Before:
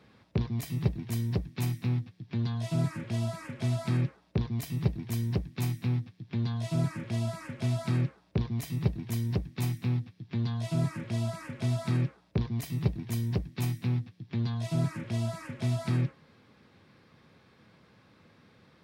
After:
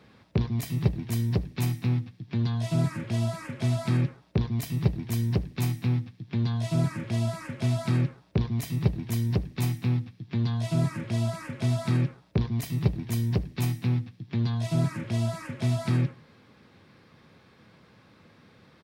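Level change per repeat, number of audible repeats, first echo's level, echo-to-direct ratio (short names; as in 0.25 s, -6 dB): -10.0 dB, 2, -22.0 dB, -21.5 dB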